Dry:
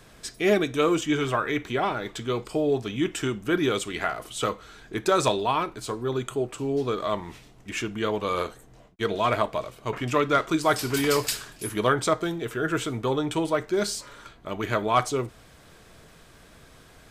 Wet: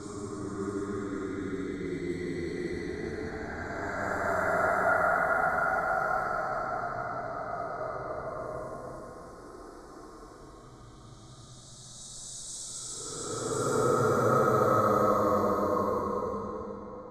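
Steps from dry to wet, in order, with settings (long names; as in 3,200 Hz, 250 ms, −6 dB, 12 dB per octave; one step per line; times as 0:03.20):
extreme stretch with random phases 24×, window 0.10 s, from 0:03.85
Butterworth band-reject 2,800 Hz, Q 0.81
low-pass that shuts in the quiet parts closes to 3,000 Hz, open at −25 dBFS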